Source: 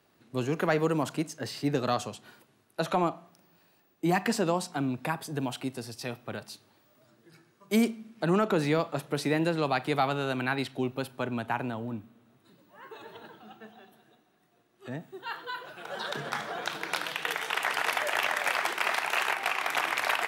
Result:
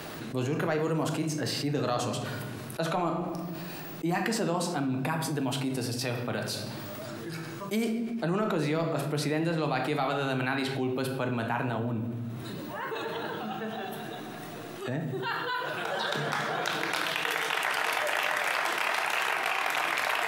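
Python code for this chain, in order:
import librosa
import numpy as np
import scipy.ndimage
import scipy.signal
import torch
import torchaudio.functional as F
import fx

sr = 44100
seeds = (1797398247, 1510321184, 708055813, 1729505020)

y = fx.room_shoebox(x, sr, seeds[0], volume_m3=210.0, walls='mixed', distance_m=0.51)
y = fx.env_flatten(y, sr, amount_pct=70)
y = y * librosa.db_to_amplitude(-7.5)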